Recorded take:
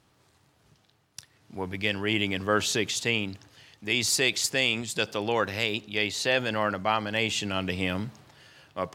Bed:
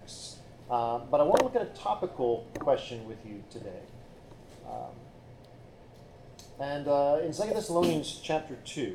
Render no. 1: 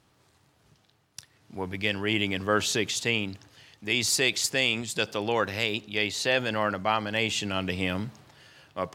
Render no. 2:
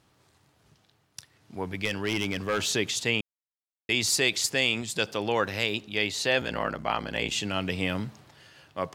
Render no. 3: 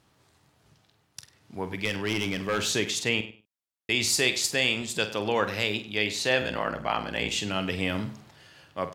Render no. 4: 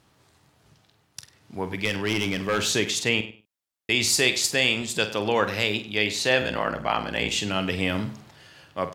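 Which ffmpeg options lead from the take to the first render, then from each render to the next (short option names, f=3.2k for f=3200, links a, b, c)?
-af anull
-filter_complex "[0:a]asettb=1/sr,asplit=3[a][b][c];[a]atrim=end=1.854[d];[b]atrim=start=1.85:end=2.7,asetpts=PTS-STARTPTS,afade=t=in:d=0.004:c=qsin,afade=t=out:st=0.846:d=0.004:c=qsin,asoftclip=type=hard:threshold=-21.5dB[e];[c]atrim=start=2.696[f];[d][e]acrossfade=d=0.004:c1=hsin:c2=qsin[g];[g][f]acrossfade=d=0.004:c1=qsin:c2=hsin,asplit=3[h][i][j];[h]afade=t=out:st=6.4:d=0.02[k];[i]aeval=exprs='val(0)*sin(2*PI*32*n/s)':c=same,afade=t=in:st=6.4:d=0.02,afade=t=out:st=7.3:d=0.02[l];[j]afade=t=in:st=7.3:d=0.02[m];[k][l][m]amix=inputs=3:normalize=0,asplit=3[n][o][p];[n]atrim=end=3.21,asetpts=PTS-STARTPTS,afade=t=out:st=3.206:d=0.004:c=hsin[q];[o]atrim=start=3.21:end=3.89,asetpts=PTS-STARTPTS,volume=0[r];[p]atrim=start=3.89,asetpts=PTS-STARTPTS,afade=t=in:d=0.004:c=hsin[s];[q][r][s]concat=n=3:v=0:a=1"
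-filter_complex "[0:a]asplit=2[a][b];[b]adelay=47,volume=-11dB[c];[a][c]amix=inputs=2:normalize=0,asplit=2[d][e];[e]adelay=99,lowpass=f=4.3k:p=1,volume=-14.5dB,asplit=2[f][g];[g]adelay=99,lowpass=f=4.3k:p=1,volume=0.2[h];[d][f][h]amix=inputs=3:normalize=0"
-af "volume=3dB"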